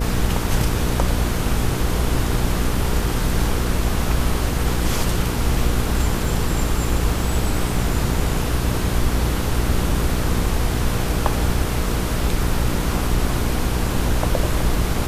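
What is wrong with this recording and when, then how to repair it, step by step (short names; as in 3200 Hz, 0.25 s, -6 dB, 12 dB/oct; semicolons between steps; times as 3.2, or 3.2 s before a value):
hum 60 Hz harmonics 8 -24 dBFS
6.25 gap 2.3 ms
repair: de-hum 60 Hz, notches 8; interpolate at 6.25, 2.3 ms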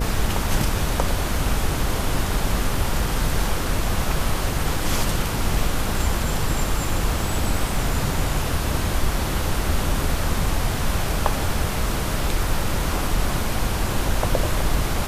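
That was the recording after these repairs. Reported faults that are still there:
none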